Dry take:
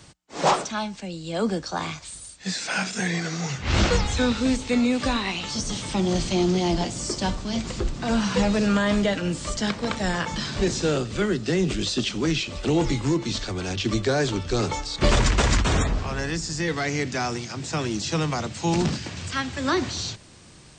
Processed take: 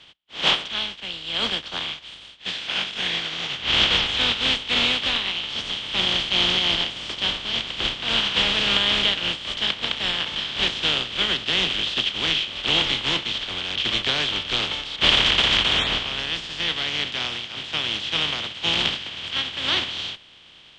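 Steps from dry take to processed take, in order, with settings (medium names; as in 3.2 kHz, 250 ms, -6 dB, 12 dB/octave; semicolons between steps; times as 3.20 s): spectral contrast reduction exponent 0.33; resonant low-pass 3.2 kHz, resonance Q 6.5; trim -5 dB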